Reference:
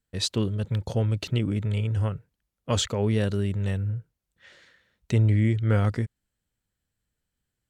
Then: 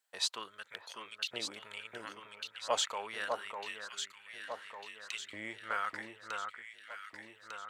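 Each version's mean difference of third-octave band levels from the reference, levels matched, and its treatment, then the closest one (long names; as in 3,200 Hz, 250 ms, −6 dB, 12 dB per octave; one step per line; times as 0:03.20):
14.0 dB: auto-filter high-pass saw up 0.75 Hz 690–3,400 Hz
delay that swaps between a low-pass and a high-pass 600 ms, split 1,600 Hz, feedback 69%, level −3.5 dB
one half of a high-frequency compander encoder only
level −5.5 dB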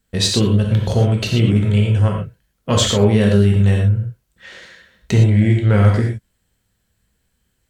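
4.0 dB: in parallel at +3 dB: downward compressor, threshold −29 dBFS, peak gain reduction 11 dB
on the sum: soft clipping −9.5 dBFS, distortion −27 dB
reverb whose tail is shaped and stops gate 140 ms flat, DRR 0 dB
level +4 dB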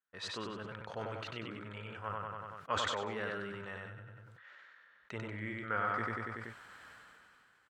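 9.0 dB: resonant band-pass 1,300 Hz, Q 2.4
repeating echo 95 ms, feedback 37%, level −4 dB
level that may fall only so fast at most 21 dB per second
level +1 dB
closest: second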